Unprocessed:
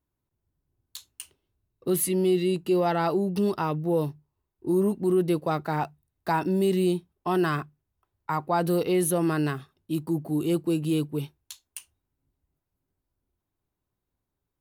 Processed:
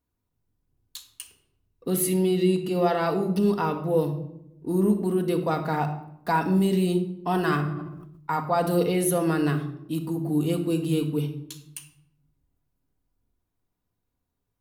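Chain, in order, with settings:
convolution reverb RT60 0.80 s, pre-delay 4 ms, DRR 4 dB
0:07.45–0:08.40: level that may fall only so fast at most 44 dB per second

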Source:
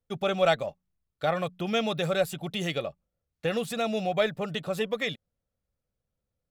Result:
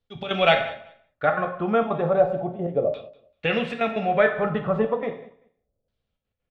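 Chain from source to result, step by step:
gate pattern "x.x.xxxx.xxxxxxx" 197 BPM −12 dB
reverb whose tail is shaped and stops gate 230 ms falling, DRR 4 dB
auto-filter low-pass saw down 0.34 Hz 540–3,900 Hz
0:04.44–0:04.85: low-shelf EQ 210 Hz +9 dB
repeating echo 194 ms, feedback 17%, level −20 dB
level +3 dB

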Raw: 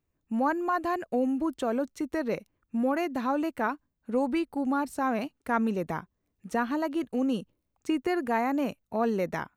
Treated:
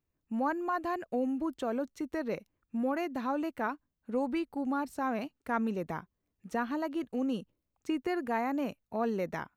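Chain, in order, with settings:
parametric band 9,200 Hz −4 dB 0.69 octaves
level −4.5 dB

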